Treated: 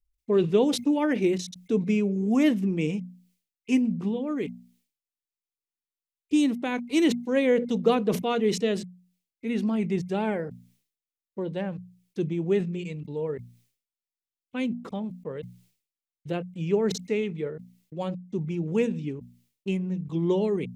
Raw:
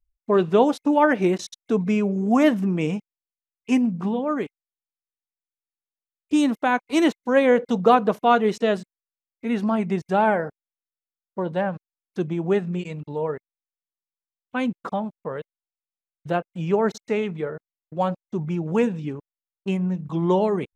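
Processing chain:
flat-topped bell 1,000 Hz −10.5 dB
mains-hum notches 60/120/180/240 Hz
level that may fall only so fast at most 120 dB per second
level −2.5 dB

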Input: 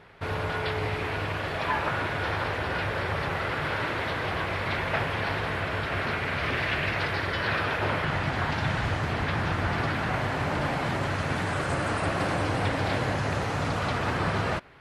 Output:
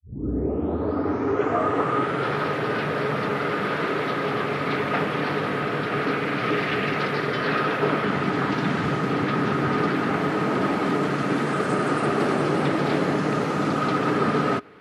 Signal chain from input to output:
turntable start at the beginning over 2.41 s
hollow resonant body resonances 240/360/1,200 Hz, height 13 dB, ringing for 45 ms
frequency shifter +49 Hz

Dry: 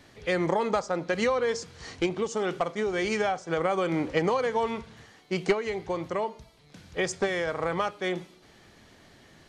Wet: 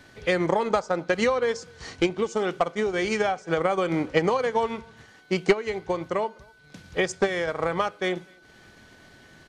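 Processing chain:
transient designer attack +3 dB, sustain −5 dB
far-end echo of a speakerphone 250 ms, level −28 dB
steady tone 1,500 Hz −57 dBFS
level +2 dB

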